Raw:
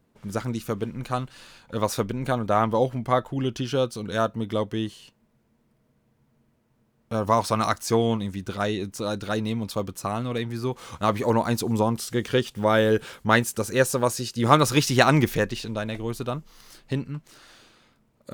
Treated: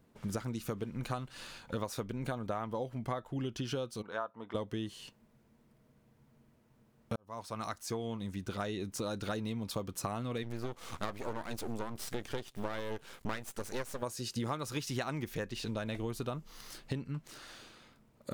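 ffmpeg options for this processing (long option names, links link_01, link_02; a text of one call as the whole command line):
ffmpeg -i in.wav -filter_complex "[0:a]asplit=3[link_01][link_02][link_03];[link_01]afade=type=out:start_time=4.01:duration=0.02[link_04];[link_02]bandpass=frequency=990:width_type=q:width=1.8,afade=type=in:start_time=4.01:duration=0.02,afade=type=out:start_time=4.54:duration=0.02[link_05];[link_03]afade=type=in:start_time=4.54:duration=0.02[link_06];[link_04][link_05][link_06]amix=inputs=3:normalize=0,asplit=3[link_07][link_08][link_09];[link_07]afade=type=out:start_time=10.42:duration=0.02[link_10];[link_08]aeval=exprs='max(val(0),0)':channel_layout=same,afade=type=in:start_time=10.42:duration=0.02,afade=type=out:start_time=14.01:duration=0.02[link_11];[link_09]afade=type=in:start_time=14.01:duration=0.02[link_12];[link_10][link_11][link_12]amix=inputs=3:normalize=0,asplit=2[link_13][link_14];[link_13]atrim=end=7.16,asetpts=PTS-STARTPTS,afade=type=out:start_time=7.156:duration=0.004:curve=hsin[link_15];[link_14]atrim=start=7.16,asetpts=PTS-STARTPTS,afade=type=in:duration=2.52[link_16];[link_15][link_16]concat=n=2:v=0:a=1,acompressor=threshold=-33dB:ratio=12" out.wav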